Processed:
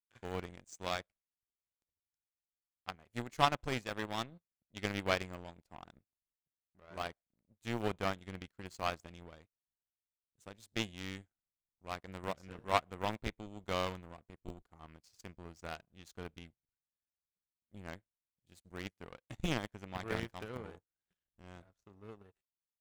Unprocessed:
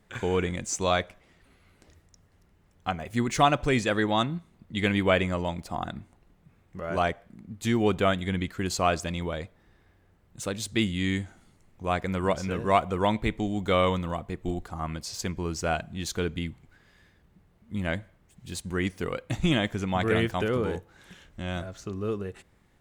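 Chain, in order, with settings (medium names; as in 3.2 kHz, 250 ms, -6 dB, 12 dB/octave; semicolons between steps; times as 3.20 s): bass shelf 84 Hz +5 dB; power-law waveshaper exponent 2; in parallel at -10.5 dB: small samples zeroed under -27 dBFS; on the sum: trim -4 dB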